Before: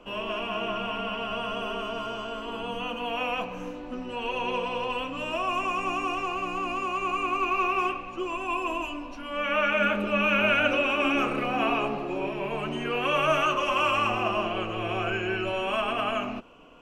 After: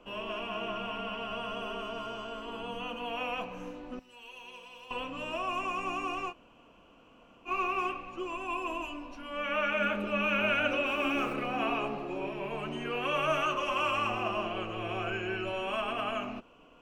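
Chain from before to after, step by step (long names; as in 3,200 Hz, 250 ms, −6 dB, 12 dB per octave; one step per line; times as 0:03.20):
0:03.99–0:04.91: first-order pre-emphasis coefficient 0.9
0:06.31–0:07.48: fill with room tone, crossfade 0.06 s
0:10.85–0:11.33: background noise pink −52 dBFS
level −5.5 dB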